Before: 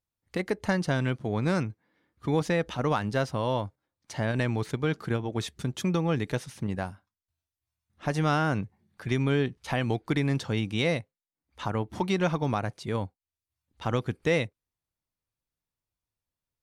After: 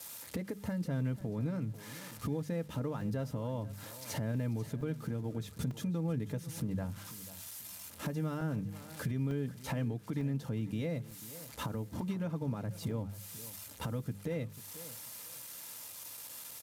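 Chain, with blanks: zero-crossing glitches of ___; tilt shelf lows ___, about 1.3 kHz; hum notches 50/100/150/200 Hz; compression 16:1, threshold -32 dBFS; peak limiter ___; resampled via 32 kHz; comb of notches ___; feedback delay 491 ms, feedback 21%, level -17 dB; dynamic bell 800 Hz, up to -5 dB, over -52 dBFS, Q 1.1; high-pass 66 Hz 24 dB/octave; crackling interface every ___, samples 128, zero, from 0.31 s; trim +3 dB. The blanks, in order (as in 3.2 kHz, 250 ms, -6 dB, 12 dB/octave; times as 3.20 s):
-30 dBFS, +8 dB, -28.5 dBFS, 370 Hz, 0.90 s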